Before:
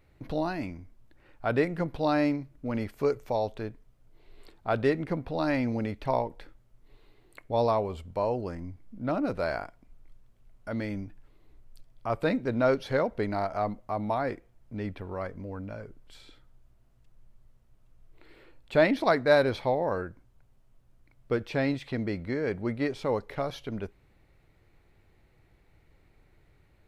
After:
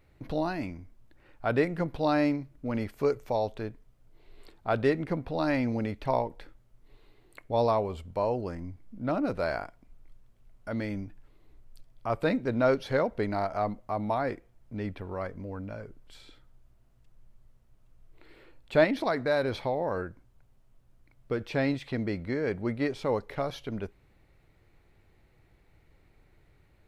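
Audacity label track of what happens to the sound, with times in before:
18.840000	21.450000	compression 2:1, threshold -26 dBFS

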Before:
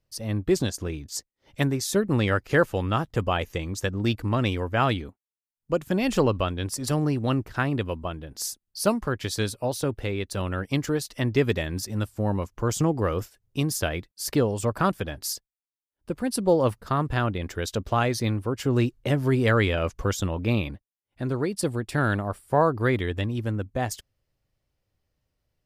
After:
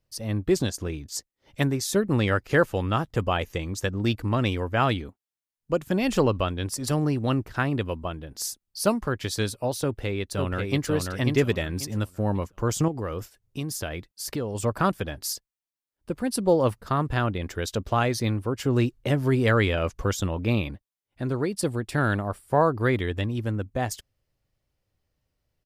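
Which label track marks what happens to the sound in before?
9.840000	10.890000	echo throw 540 ms, feedback 25%, level -3.5 dB
12.880000	14.550000	compression 2:1, threshold -31 dBFS

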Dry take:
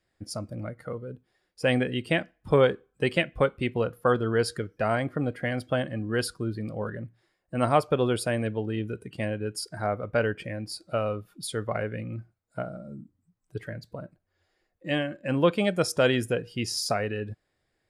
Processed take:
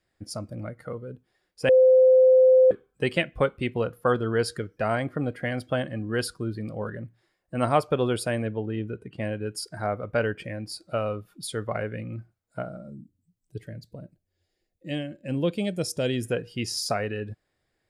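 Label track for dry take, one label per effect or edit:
1.690000	2.710000	bleep 516 Hz -12.5 dBFS
8.420000	9.250000	low-pass 2.2 kHz 6 dB/octave
12.900000	16.240000	peaking EQ 1.2 kHz -15 dB 1.7 oct

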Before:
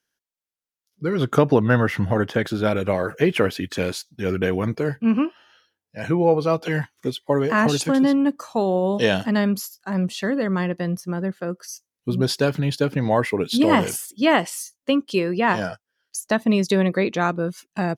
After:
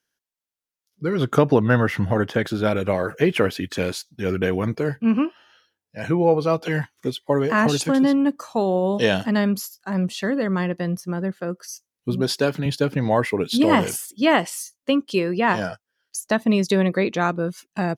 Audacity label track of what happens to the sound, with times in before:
12.150000	12.660000	high-pass 160 Hz

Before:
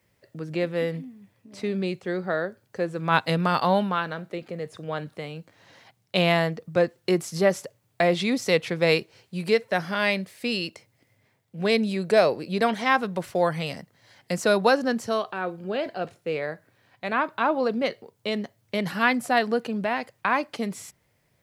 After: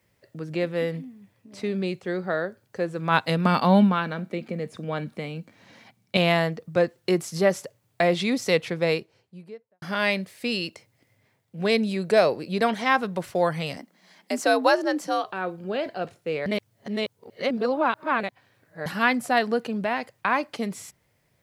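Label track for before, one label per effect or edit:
3.450000	6.170000	small resonant body resonances 220/2300 Hz, height 12 dB
8.480000	9.820000	studio fade out
13.770000	15.240000	frequency shift +71 Hz
16.460000	18.860000	reverse

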